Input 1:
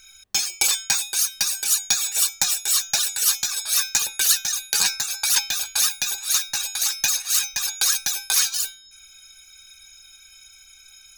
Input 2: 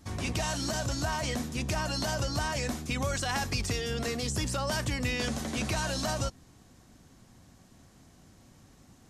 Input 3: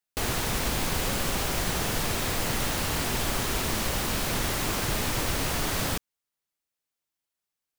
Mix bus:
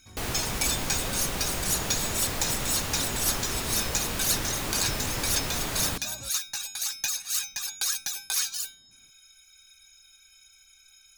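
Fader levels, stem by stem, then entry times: −8.0, −13.5, −3.5 decibels; 0.00, 0.00, 0.00 seconds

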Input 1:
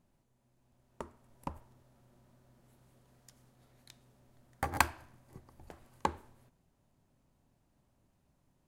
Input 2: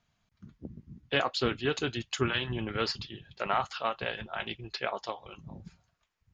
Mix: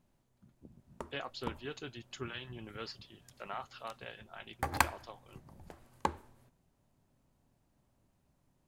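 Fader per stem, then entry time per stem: −0.5, −13.0 decibels; 0.00, 0.00 seconds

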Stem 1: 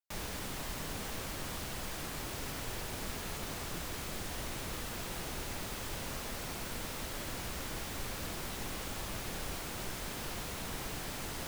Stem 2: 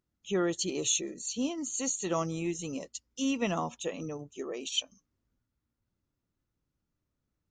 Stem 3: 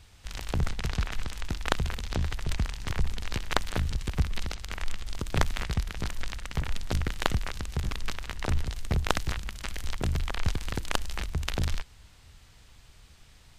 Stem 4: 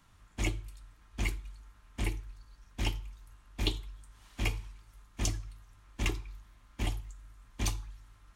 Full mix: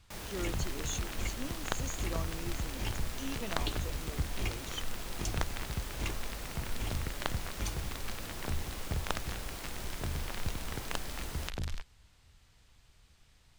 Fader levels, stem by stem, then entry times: −3.0, −11.0, −8.5, −6.0 decibels; 0.00, 0.00, 0.00, 0.00 seconds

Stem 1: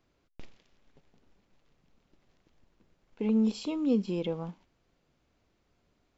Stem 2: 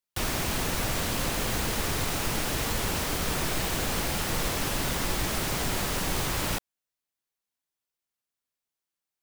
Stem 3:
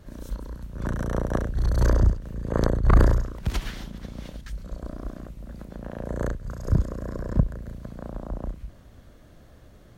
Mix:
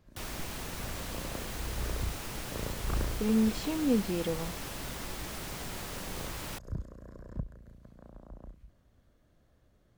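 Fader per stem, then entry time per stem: −0.5, −11.0, −16.0 decibels; 0.00, 0.00, 0.00 seconds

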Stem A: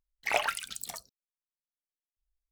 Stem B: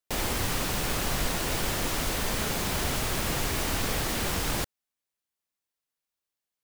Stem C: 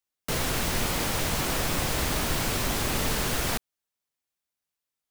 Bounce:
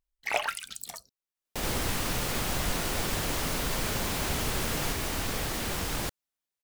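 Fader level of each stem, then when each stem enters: −0.5, −3.0, −8.0 decibels; 0.00, 1.45, 1.35 seconds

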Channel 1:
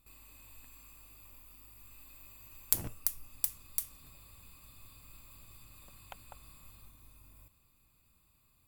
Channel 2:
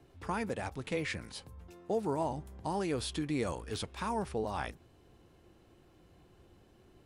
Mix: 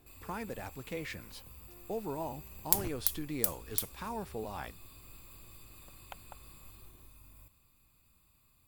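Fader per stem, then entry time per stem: +1.5, −5.0 decibels; 0.00, 0.00 seconds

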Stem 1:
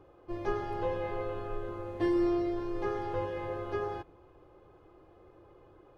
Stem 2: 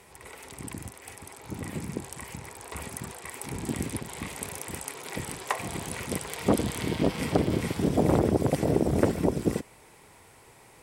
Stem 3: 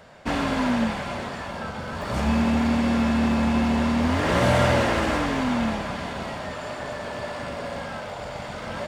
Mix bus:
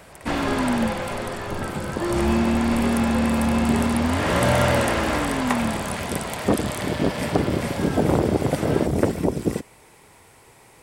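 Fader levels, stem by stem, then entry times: +2.0, +3.0, +0.5 decibels; 0.00, 0.00, 0.00 seconds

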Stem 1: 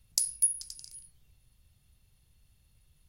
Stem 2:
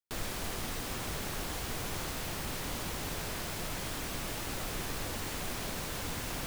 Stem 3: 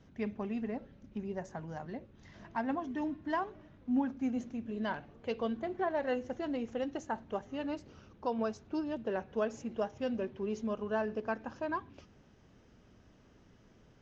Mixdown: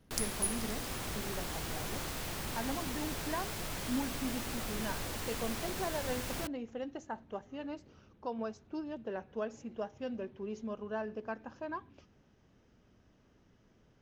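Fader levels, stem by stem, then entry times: −8.5, −2.0, −4.5 decibels; 0.00, 0.00, 0.00 seconds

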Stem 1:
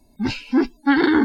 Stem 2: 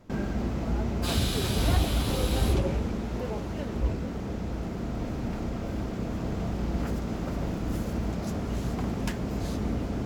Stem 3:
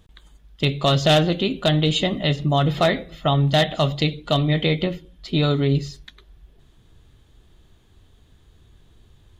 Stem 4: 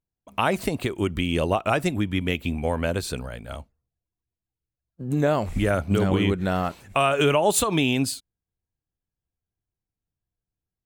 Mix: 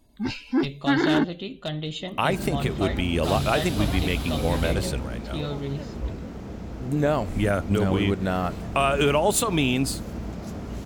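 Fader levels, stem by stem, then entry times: −5.0, −3.0, −12.0, −1.0 decibels; 0.00, 2.20, 0.00, 1.80 seconds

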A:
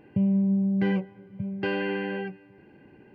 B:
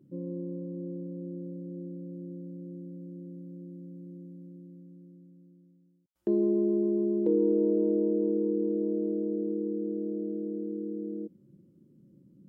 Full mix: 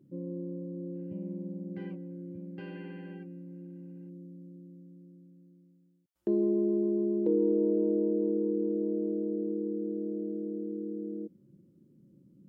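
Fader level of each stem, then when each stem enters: −19.5, −1.5 decibels; 0.95, 0.00 seconds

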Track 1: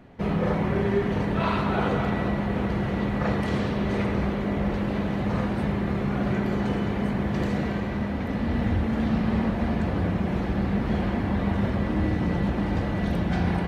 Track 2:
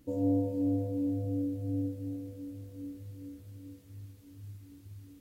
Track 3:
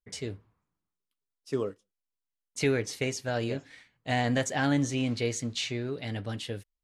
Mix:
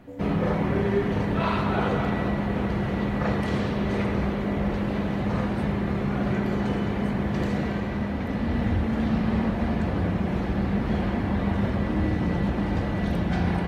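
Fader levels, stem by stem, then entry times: 0.0 dB, −6.5 dB, muted; 0.00 s, 0.00 s, muted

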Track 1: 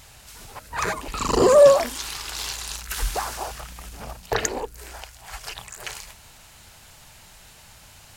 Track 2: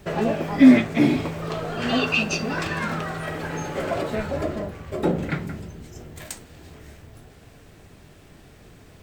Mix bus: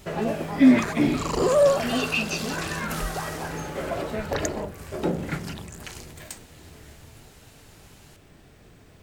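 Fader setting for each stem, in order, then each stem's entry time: −6.0, −3.5 decibels; 0.00, 0.00 seconds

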